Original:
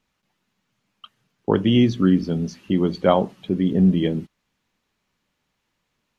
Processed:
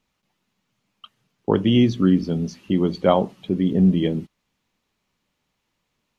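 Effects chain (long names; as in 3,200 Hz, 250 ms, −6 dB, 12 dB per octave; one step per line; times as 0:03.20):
parametric band 1,600 Hz −3.5 dB 0.48 octaves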